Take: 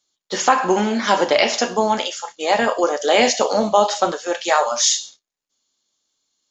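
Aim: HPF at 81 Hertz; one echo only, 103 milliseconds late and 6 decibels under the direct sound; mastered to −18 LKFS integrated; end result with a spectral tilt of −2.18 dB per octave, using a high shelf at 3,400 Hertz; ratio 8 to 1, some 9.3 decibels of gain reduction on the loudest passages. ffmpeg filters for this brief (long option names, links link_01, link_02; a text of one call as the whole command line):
ffmpeg -i in.wav -af "highpass=81,highshelf=frequency=3400:gain=-3.5,acompressor=threshold=-20dB:ratio=8,aecho=1:1:103:0.501,volume=6.5dB" out.wav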